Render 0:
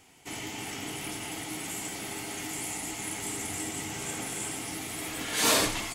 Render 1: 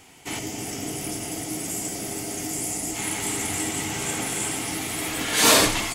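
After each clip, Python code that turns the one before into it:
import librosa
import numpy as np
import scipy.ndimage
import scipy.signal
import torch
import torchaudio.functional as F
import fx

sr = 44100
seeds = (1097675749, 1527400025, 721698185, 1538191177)

y = fx.spec_box(x, sr, start_s=0.39, length_s=2.56, low_hz=760.0, high_hz=4600.0, gain_db=-8)
y = F.gain(torch.from_numpy(y), 7.5).numpy()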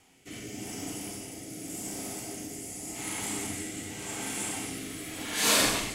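y = fx.rev_schroeder(x, sr, rt60_s=1.0, comb_ms=30, drr_db=1.5)
y = fx.rotary(y, sr, hz=0.85)
y = F.gain(torch.from_numpy(y), -8.0).numpy()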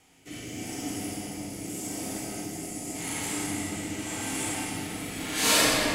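y = fx.room_shoebox(x, sr, seeds[0], volume_m3=160.0, walls='hard', distance_m=0.5)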